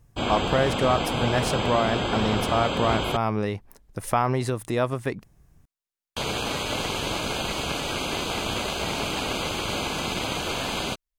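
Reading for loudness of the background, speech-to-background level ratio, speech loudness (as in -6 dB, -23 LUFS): -27.0 LUFS, 1.0 dB, -26.0 LUFS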